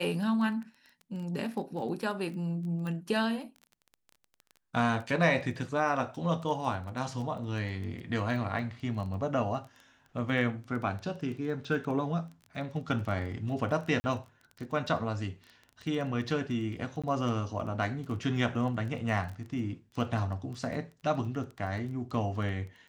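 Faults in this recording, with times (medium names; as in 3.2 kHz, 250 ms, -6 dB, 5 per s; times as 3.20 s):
crackle 15 per s -38 dBFS
2.87 s: pop -27 dBFS
14.00–14.04 s: dropout 40 ms
17.02–17.04 s: dropout 16 ms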